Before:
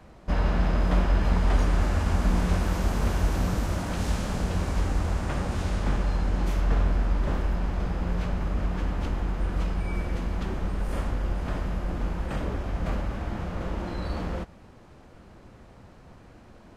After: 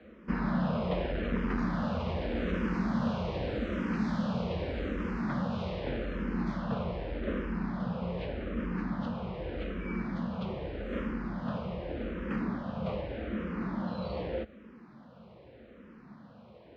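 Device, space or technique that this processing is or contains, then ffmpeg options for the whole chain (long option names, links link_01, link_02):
barber-pole phaser into a guitar amplifier: -filter_complex "[0:a]asplit=2[link_01][link_02];[link_02]afreqshift=-0.83[link_03];[link_01][link_03]amix=inputs=2:normalize=1,asoftclip=type=tanh:threshold=-17.5dB,highpass=90,equalizer=frequency=94:width_type=q:width=4:gain=-9,equalizer=frequency=220:width_type=q:width=4:gain=9,equalizer=frequency=510:width_type=q:width=4:gain=6,equalizer=frequency=800:width_type=q:width=4:gain=-4,lowpass=frequency=4000:width=0.5412,lowpass=frequency=4000:width=1.3066"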